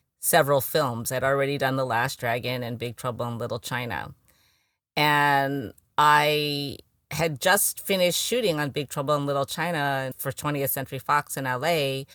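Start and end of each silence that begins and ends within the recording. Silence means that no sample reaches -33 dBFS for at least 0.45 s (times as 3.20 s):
4.10–4.97 s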